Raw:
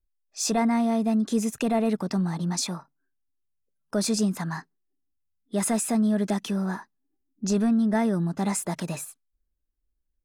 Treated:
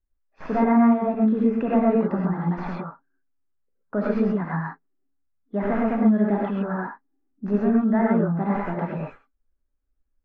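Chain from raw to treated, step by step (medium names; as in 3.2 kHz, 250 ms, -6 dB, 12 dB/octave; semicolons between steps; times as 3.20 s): tracing distortion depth 0.037 ms; low-pass 1.9 kHz 24 dB/octave; peaking EQ 120 Hz -5.5 dB 0.77 oct; gated-style reverb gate 150 ms rising, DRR -4 dB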